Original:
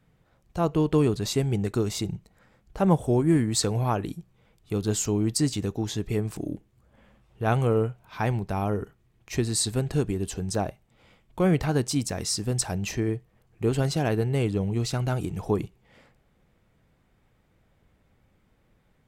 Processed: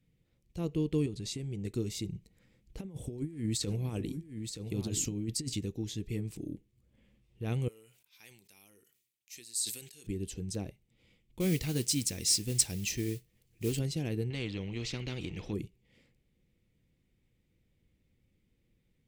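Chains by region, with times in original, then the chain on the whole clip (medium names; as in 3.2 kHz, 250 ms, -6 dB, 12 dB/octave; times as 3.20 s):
1.06–1.65 s: low-pass 11 kHz 24 dB/octave + compression 5:1, threshold -25 dBFS + transformer saturation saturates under 200 Hz
2.15–5.59 s: compressor with a negative ratio -26 dBFS, ratio -0.5 + delay 924 ms -7.5 dB
7.68–10.07 s: differentiator + decay stretcher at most 76 dB/s
11.40–13.79 s: treble shelf 2.5 kHz +10 dB + modulation noise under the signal 16 dB
14.30–15.53 s: distance through air 220 m + spectrum-flattening compressor 2:1
whole clip: high-order bell 990 Hz -14 dB; band-stop 420 Hz, Q 12; trim -7.5 dB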